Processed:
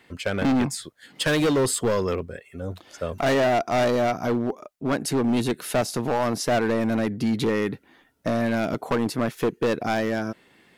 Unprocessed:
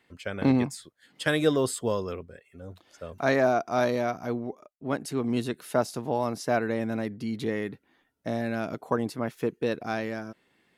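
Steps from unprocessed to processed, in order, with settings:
in parallel at 0 dB: downward compressor, threshold −31 dBFS, peak gain reduction 13 dB
on the sum: hard clipping −22.5 dBFS, distortion −8 dB
level +4.5 dB

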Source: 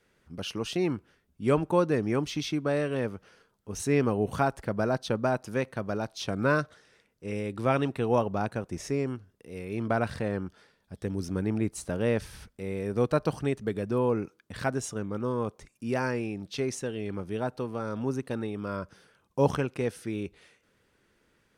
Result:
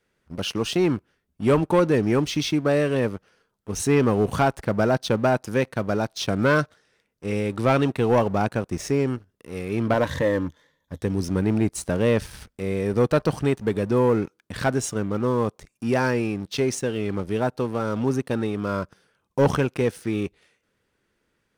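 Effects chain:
0:09.93–0:11.01: EQ curve with evenly spaced ripples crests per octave 1.1, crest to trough 12 dB
leveller curve on the samples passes 2

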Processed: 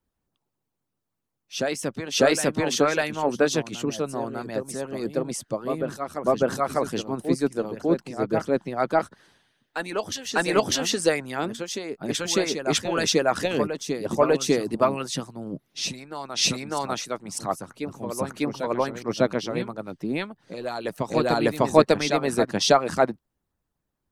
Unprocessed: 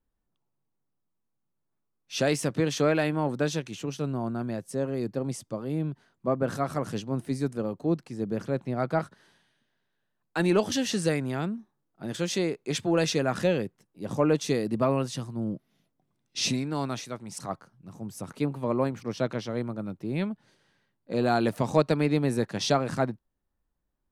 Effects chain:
backwards echo 599 ms −7 dB
harmonic and percussive parts rebalanced harmonic −17 dB
level +8 dB

